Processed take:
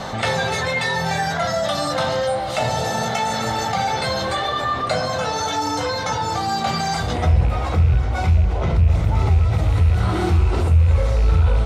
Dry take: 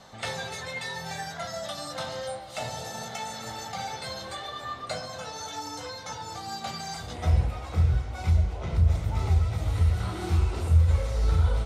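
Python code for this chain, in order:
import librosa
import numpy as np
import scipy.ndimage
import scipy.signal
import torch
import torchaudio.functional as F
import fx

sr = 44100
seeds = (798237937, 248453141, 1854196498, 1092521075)

y = fx.rattle_buzz(x, sr, strikes_db=-22.0, level_db=-33.0)
y = fx.high_shelf(y, sr, hz=4000.0, db=-9.0)
y = fx.env_flatten(y, sr, amount_pct=50)
y = y * librosa.db_to_amplitude(4.0)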